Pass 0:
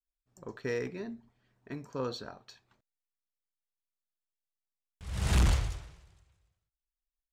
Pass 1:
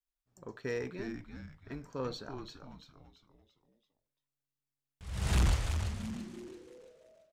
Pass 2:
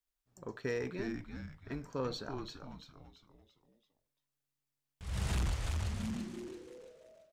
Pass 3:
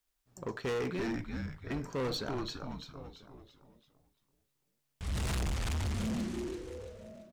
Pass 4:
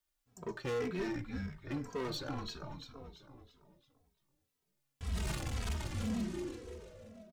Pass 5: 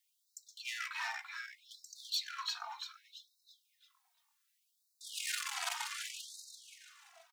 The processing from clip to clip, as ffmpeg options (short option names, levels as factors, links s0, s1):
-filter_complex "[0:a]asplit=6[s0][s1][s2][s3][s4][s5];[s1]adelay=337,afreqshift=-140,volume=0.447[s6];[s2]adelay=674,afreqshift=-280,volume=0.188[s7];[s3]adelay=1011,afreqshift=-420,volume=0.0785[s8];[s4]adelay=1348,afreqshift=-560,volume=0.0331[s9];[s5]adelay=1685,afreqshift=-700,volume=0.014[s10];[s0][s6][s7][s8][s9][s10]amix=inputs=6:normalize=0,volume=0.75"
-af "acompressor=threshold=0.0224:ratio=6,volume=1.26"
-filter_complex "[0:a]asplit=2[s0][s1];[s1]adelay=991.3,volume=0.0794,highshelf=f=4000:g=-22.3[s2];[s0][s2]amix=inputs=2:normalize=0,asoftclip=type=hard:threshold=0.0126,volume=2.24"
-filter_complex "[0:a]asplit=2[s0][s1];[s1]adelay=2.8,afreqshift=-1.9[s2];[s0][s2]amix=inputs=2:normalize=1"
-af "afftfilt=real='re*gte(b*sr/1024,670*pow(3800/670,0.5+0.5*sin(2*PI*0.66*pts/sr)))':imag='im*gte(b*sr/1024,670*pow(3800/670,0.5+0.5*sin(2*PI*0.66*pts/sr)))':win_size=1024:overlap=0.75,volume=2.37"